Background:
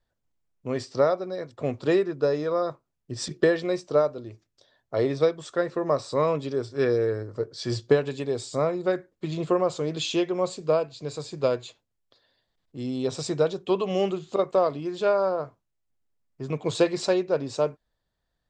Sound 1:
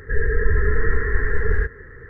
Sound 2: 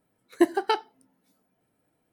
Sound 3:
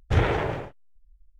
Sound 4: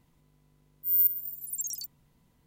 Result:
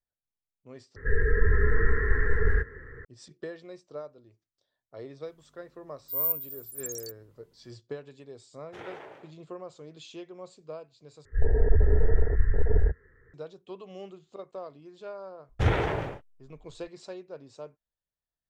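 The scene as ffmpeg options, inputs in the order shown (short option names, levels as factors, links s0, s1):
-filter_complex "[1:a]asplit=2[s0][s1];[3:a]asplit=2[s2][s3];[0:a]volume=0.126[s4];[s2]highpass=320[s5];[s1]afwtdn=0.112[s6];[s4]asplit=3[s7][s8][s9];[s7]atrim=end=0.964[s10];[s0]atrim=end=2.09,asetpts=PTS-STARTPTS,volume=0.631[s11];[s8]atrim=start=3.046:end=11.254[s12];[s6]atrim=end=2.09,asetpts=PTS-STARTPTS,volume=0.794[s13];[s9]atrim=start=13.336[s14];[4:a]atrim=end=2.46,asetpts=PTS-STARTPTS,volume=0.631,afade=t=in:d=0.004:c=hsin,afade=t=out:st=2.456:d=0.004:c=hsin,adelay=231525S[s15];[s5]atrim=end=1.39,asetpts=PTS-STARTPTS,volume=0.141,afade=t=in:d=0.004:c=hsin,afade=t=out:st=1.386:d=0.004:c=hsin,adelay=8620[s16];[s3]atrim=end=1.39,asetpts=PTS-STARTPTS,volume=0.75,afade=t=in:d=0.004:c=hsin,afade=t=out:st=1.386:d=0.004:c=hsin,adelay=15490[s17];[s10][s11]acrossfade=d=0.004:c1=hsin:c2=hsin[s18];[s18][s12]acrossfade=d=0.004:c1=hsin:c2=hsin[s19];[s19][s13]acrossfade=d=0.004:c1=hsin:c2=hsin[s20];[s20][s14]acrossfade=d=0.004:c1=hsin:c2=hsin[s21];[s21][s15][s16][s17]amix=inputs=4:normalize=0"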